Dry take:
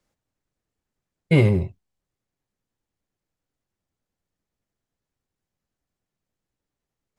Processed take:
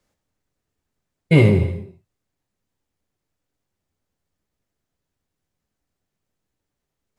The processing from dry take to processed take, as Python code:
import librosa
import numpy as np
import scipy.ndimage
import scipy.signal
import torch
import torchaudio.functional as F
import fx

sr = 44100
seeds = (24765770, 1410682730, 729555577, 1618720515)

y = fx.rev_gated(x, sr, seeds[0], gate_ms=360, shape='falling', drr_db=7.0)
y = F.gain(torch.from_numpy(y), 3.0).numpy()